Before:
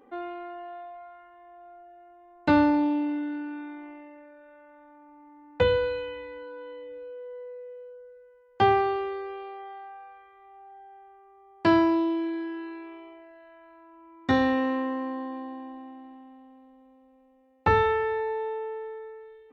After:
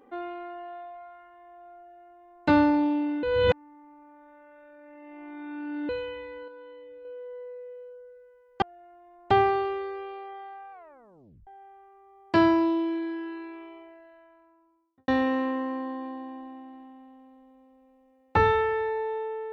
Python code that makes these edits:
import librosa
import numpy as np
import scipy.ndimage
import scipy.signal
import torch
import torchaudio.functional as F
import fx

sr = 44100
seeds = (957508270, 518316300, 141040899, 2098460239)

y = fx.studio_fade_out(x, sr, start_s=13.1, length_s=1.29)
y = fx.edit(y, sr, fx.duplicate(start_s=1.79, length_s=0.69, to_s=8.62),
    fx.reverse_span(start_s=3.23, length_s=2.66),
    fx.clip_gain(start_s=6.48, length_s=0.57, db=-5.0),
    fx.tape_stop(start_s=10.03, length_s=0.75), tone=tone)